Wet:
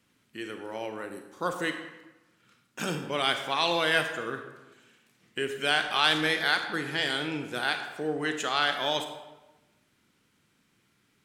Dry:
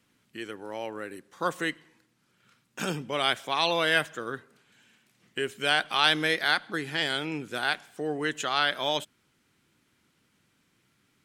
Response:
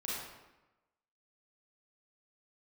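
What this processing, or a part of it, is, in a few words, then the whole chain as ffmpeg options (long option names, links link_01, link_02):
saturated reverb return: -filter_complex "[0:a]asplit=2[link_01][link_02];[1:a]atrim=start_sample=2205[link_03];[link_02][link_03]afir=irnorm=-1:irlink=0,asoftclip=type=tanh:threshold=-18dB,volume=-5dB[link_04];[link_01][link_04]amix=inputs=2:normalize=0,asettb=1/sr,asplit=3[link_05][link_06][link_07];[link_05]atrim=end=1.054[link_08];[link_06]atrim=start=1.05:end=1.64,asetpts=PTS-STARTPTS,afade=type=in:duration=0.004:curve=qsin,afade=type=out:start_time=0.586:duration=0.004:curve=qsin,equalizer=frequency=2200:width_type=o:width=1.2:gain=-5[link_09];[link_07]atrim=start=1.636[link_10];[link_08][link_09]acrossfade=duration=0.004:curve1=hsin:curve2=qsin[link_11];[link_11][link_10]acrossfade=duration=0.004:curve1=qsin:curve2=hsin,volume=-3dB"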